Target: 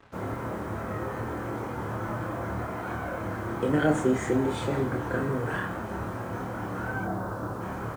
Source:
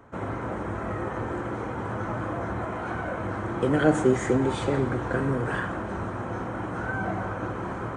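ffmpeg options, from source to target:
-filter_complex "[0:a]asettb=1/sr,asplit=3[a][b][c];[a]atrim=end=7.044[d];[b]atrim=start=7.04:end=7.61,asetpts=PTS-STARTPTS,afade=t=in:d=0.004:c=qsin,afade=t=out:st=0.566:d=0.004:c=qsin,lowpass=f=1.5k:w=0.5412,lowpass=f=1.5k:w=1.3066[e];[c]atrim=start=7.606[f];[d][e]acrossfade=d=0.004:c1=hsin:c2=qsin[g];[g][f]acrossfade=d=0.004:c1=qsin:c2=hsin,acrusher=bits=7:mix=0:aa=0.5,asplit=2[h][i];[i]adelay=27,volume=-4dB[j];[h][j]amix=inputs=2:normalize=0,volume=-3.5dB"

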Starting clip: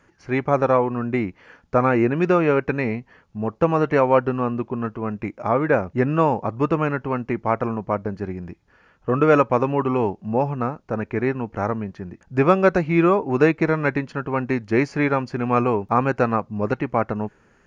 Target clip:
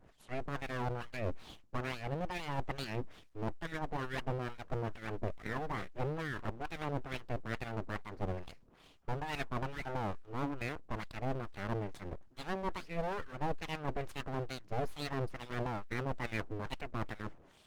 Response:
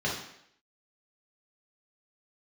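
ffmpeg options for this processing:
-filter_complex "[0:a]areverse,acompressor=threshold=-32dB:ratio=6,areverse,acrossover=split=690[a][b];[a]aeval=exprs='val(0)*(1-1/2+1/2*cos(2*PI*2.3*n/s))':c=same[c];[b]aeval=exprs='val(0)*(1-1/2-1/2*cos(2*PI*2.3*n/s))':c=same[d];[c][d]amix=inputs=2:normalize=0,aeval=exprs='abs(val(0))':c=same,volume=5.5dB" -ar 48000 -c:a libopus -b:a 20k

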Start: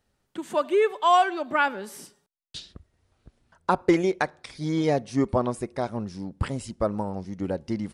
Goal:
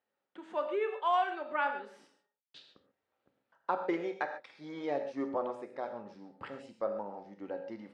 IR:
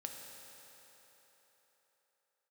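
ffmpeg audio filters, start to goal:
-filter_complex "[0:a]highpass=380,lowpass=2.8k[a];[1:a]atrim=start_sample=2205,atrim=end_sample=6615[b];[a][b]afir=irnorm=-1:irlink=0,volume=-5dB"

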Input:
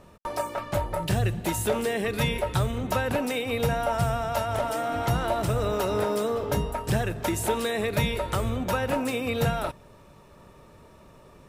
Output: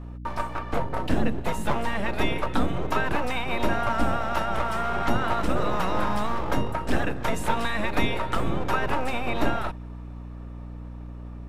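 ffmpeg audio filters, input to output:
-filter_complex "[0:a]lowpass=f=1.3k:p=1,acrossover=split=770|990[a][b][c];[a]aeval=exprs='abs(val(0))':c=same[d];[c]dynaudnorm=f=280:g=17:m=4dB[e];[d][b][e]amix=inputs=3:normalize=0,aeval=exprs='val(0)+0.00891*(sin(2*PI*60*n/s)+sin(2*PI*2*60*n/s)/2+sin(2*PI*3*60*n/s)/3+sin(2*PI*4*60*n/s)/4+sin(2*PI*5*60*n/s)/5)':c=same,volume=4.5dB"

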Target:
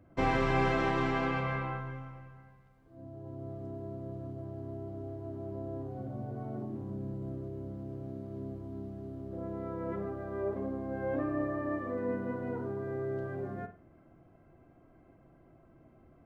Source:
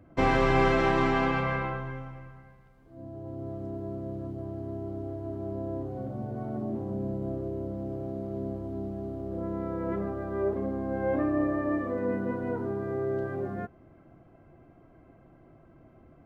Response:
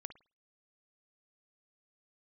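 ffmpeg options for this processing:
-filter_complex "[0:a]asettb=1/sr,asplit=3[a][b][c];[a]atrim=end=6.654[d];[b]atrim=start=6.65:end=9.33,asetpts=PTS-STARTPTS,afade=t=in:d=0.004:c=qsin,afade=t=out:st=2.676:d=0.004:c=qsin,equalizer=f=640:t=o:w=1.1:g=-6[e];[c]atrim=start=9.326[f];[d][e]acrossfade=d=0.004:c1=hsin:c2=qsin[g];[g][f]acrossfade=d=0.004:c1=qsin:c2=hsin[h];[1:a]atrim=start_sample=2205[i];[h][i]afir=irnorm=-1:irlink=0"

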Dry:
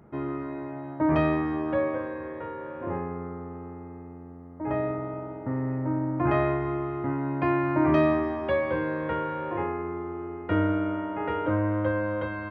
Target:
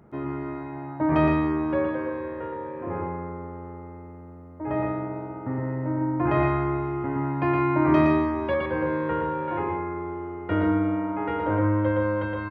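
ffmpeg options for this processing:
-filter_complex "[0:a]asettb=1/sr,asplit=3[a][b][c];[a]atrim=end=8.544[d];[b]atrim=start=8.54:end=9.48,asetpts=PTS-STARTPTS,afade=t=in:d=0.004:c=qsin,afade=t=out:st=0.936:d=0.004:c=qsin,acrossover=split=2600[e][f];[f]acompressor=threshold=-53dB:ratio=4:attack=1:release=60[g];[e][g]amix=inputs=2:normalize=0[h];[c]atrim=start=9.476[i];[d][h]acrossfade=d=0.004:c1=hsin:c2=qsin[j];[j][i]acrossfade=d=0.004:c1=qsin:c2=hsin,aecho=1:1:116.6|157.4:0.708|0.316"

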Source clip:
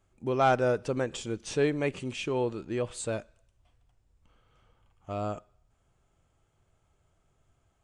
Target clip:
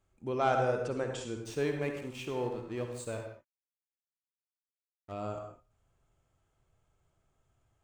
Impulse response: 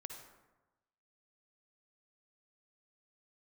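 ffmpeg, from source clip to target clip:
-filter_complex "[0:a]asettb=1/sr,asplit=3[a][b][c];[a]atrim=end=1.374[d];[b]atrim=start=1.37:end=5.12,asetpts=PTS-STARTPTS,afade=t=in:d=0.004:c=qsin,afade=t=out:st=3.746:d=0.004:c=qsin,aeval=exprs='sgn(val(0))*max(abs(val(0))-0.00501,0)':c=same[e];[c]atrim=start=5.116[f];[d][e]acrossfade=d=0.004:c1=hsin:c2=qsin[g];[g][f]acrossfade=d=0.004:c1=qsin:c2=hsin[h];[1:a]atrim=start_sample=2205,afade=t=out:st=0.27:d=0.01,atrim=end_sample=12348[i];[h][i]afir=irnorm=-1:irlink=0"

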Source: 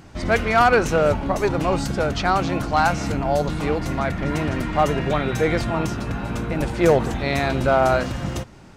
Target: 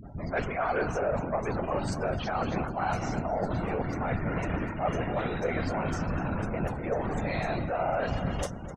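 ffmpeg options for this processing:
-filter_complex "[0:a]equalizer=f=650:w=2.7:g=3.5,acrossover=split=340|3700[a][b][c];[b]adelay=30[d];[c]adelay=70[e];[a][d][e]amix=inputs=3:normalize=0,areverse,acompressor=threshold=-29dB:ratio=6,areverse,asoftclip=type=tanh:threshold=-25dB,afftfilt=real='hypot(re,im)*cos(2*PI*random(0))':imag='hypot(re,im)*sin(2*PI*random(1))':win_size=512:overlap=0.75,asplit=2[f][g];[g]aecho=0:1:256|512|768:0.282|0.0789|0.0221[h];[f][h]amix=inputs=2:normalize=0,afftdn=nr=32:nf=-54,volume=9dB"

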